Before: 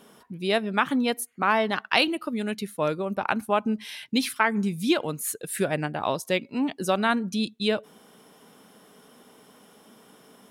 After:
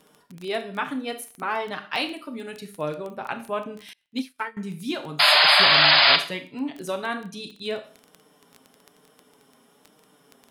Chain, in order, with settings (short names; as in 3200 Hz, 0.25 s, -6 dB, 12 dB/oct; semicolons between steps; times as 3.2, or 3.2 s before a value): 5.19–6.16 painted sound noise 570–5100 Hz -11 dBFS; flange 1.1 Hz, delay 6.4 ms, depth 1.2 ms, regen -15%; Schroeder reverb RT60 0.4 s, combs from 27 ms, DRR 8 dB; crackle 12/s -28 dBFS; 3.93–4.57 upward expander 2.5:1, over -40 dBFS; gain -2 dB